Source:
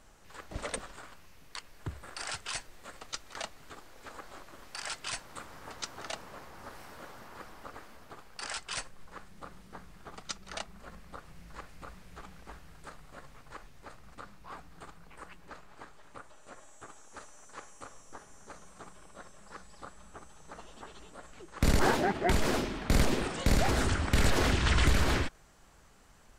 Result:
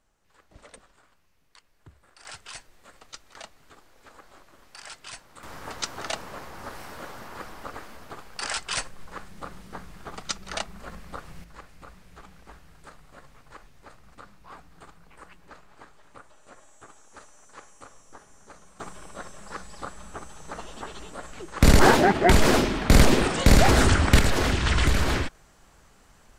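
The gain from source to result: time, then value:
-12.5 dB
from 2.25 s -4 dB
from 5.43 s +8 dB
from 11.44 s 0 dB
from 18.8 s +10 dB
from 24.19 s +3.5 dB

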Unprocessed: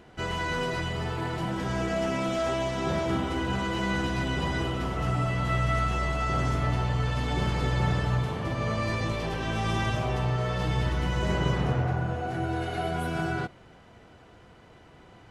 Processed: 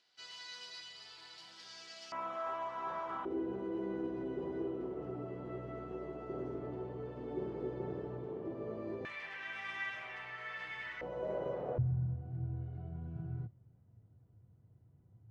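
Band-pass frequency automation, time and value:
band-pass, Q 4.3
4600 Hz
from 2.12 s 1100 Hz
from 3.25 s 380 Hz
from 9.05 s 2000 Hz
from 11.01 s 550 Hz
from 11.78 s 110 Hz

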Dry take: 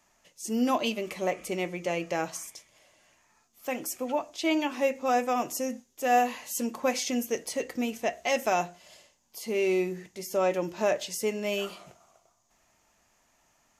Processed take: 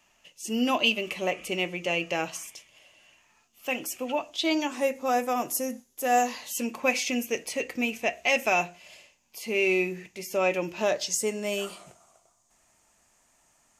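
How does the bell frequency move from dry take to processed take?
bell +12.5 dB 0.42 oct
4.3 s 2800 Hz
4.9 s 11000 Hz
6.04 s 11000 Hz
6.61 s 2500 Hz
10.75 s 2500 Hz
11.23 s 8600 Hz

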